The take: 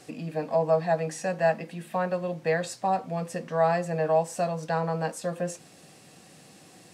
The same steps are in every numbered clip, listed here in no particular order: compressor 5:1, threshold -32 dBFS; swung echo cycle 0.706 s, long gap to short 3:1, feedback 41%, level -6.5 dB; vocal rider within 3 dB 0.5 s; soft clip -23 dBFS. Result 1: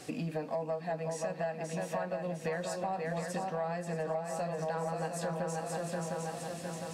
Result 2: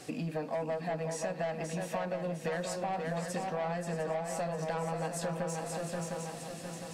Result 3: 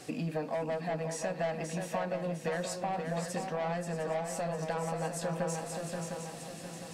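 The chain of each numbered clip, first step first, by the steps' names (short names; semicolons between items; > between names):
swung echo > vocal rider > compressor > soft clip; vocal rider > soft clip > swung echo > compressor; soft clip > compressor > swung echo > vocal rider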